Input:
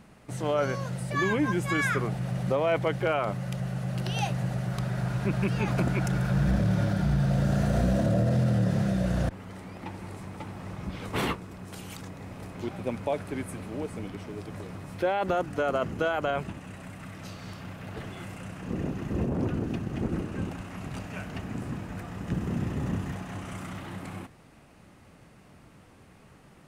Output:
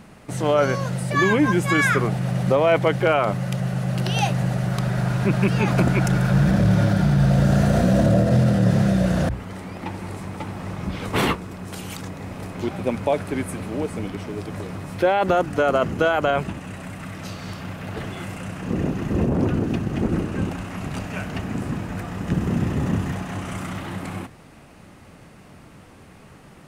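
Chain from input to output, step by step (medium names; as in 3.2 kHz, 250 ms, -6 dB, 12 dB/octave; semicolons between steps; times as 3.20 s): hum notches 60/120 Hz; trim +8 dB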